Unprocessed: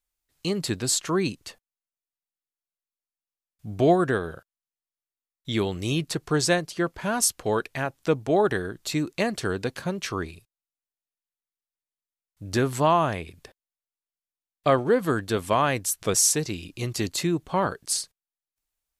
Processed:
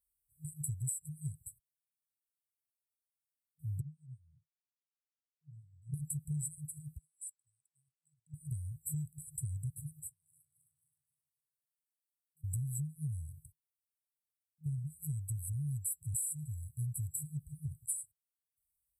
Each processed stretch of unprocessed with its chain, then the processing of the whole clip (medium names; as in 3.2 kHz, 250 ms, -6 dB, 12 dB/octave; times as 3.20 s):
3.81–5.94 s: high-pass 280 Hz + tape spacing loss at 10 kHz 35 dB + detune thickener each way 14 cents
6.98–8.34 s: high-pass 1.3 kHz + level held to a coarse grid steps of 14 dB + distance through air 120 m
10.09–12.44 s: backward echo that repeats 132 ms, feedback 61%, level -11 dB + compression 5:1, threshold -46 dBFS + high-pass 260 Hz 24 dB/octave
whole clip: high-pass 60 Hz; FFT band-reject 160–7700 Hz; compression 10:1, threshold -36 dBFS; trim +2 dB